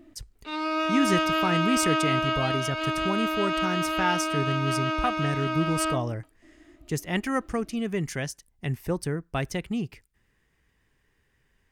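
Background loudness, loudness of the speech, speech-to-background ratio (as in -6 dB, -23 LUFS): -27.0 LUFS, -29.5 LUFS, -2.5 dB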